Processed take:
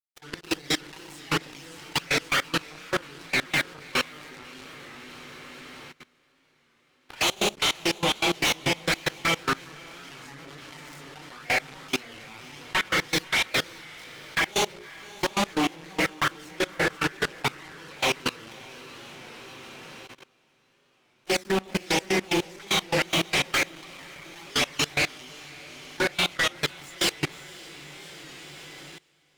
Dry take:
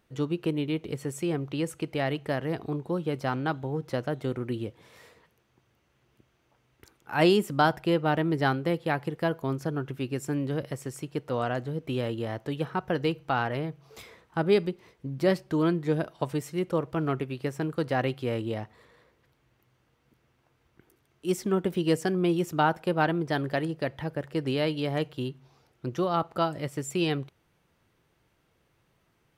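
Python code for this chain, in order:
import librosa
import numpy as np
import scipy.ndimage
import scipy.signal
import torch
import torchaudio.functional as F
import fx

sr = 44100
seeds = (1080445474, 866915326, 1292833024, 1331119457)

y = fx.self_delay(x, sr, depth_ms=0.79)
y = fx.doubler(y, sr, ms=36.0, db=-5)
y = fx.room_shoebox(y, sr, seeds[0], volume_m3=76.0, walls='mixed', distance_m=0.99)
y = fx.env_flanger(y, sr, rest_ms=2.7, full_db=-16.5)
y = fx.weighting(y, sr, curve='ITU-R 468')
y = fx.fuzz(y, sr, gain_db=39.0, gate_db=-35.0)
y = fx.high_shelf(y, sr, hz=3500.0, db=-8.5)
y = fx.hum_notches(y, sr, base_hz=60, count=10)
y = fx.granulator(y, sr, seeds[1], grain_ms=226.0, per_s=4.9, spray_ms=13.0, spread_st=0)
y = fx.echo_diffused(y, sr, ms=583, feedback_pct=55, wet_db=-9)
y = fx.level_steps(y, sr, step_db=22)
y = fx.record_warp(y, sr, rpm=33.33, depth_cents=100.0)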